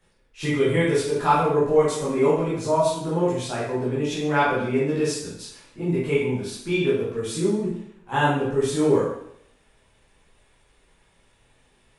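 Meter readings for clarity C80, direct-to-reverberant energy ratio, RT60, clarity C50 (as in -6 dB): 5.0 dB, -9.5 dB, 0.70 s, 1.0 dB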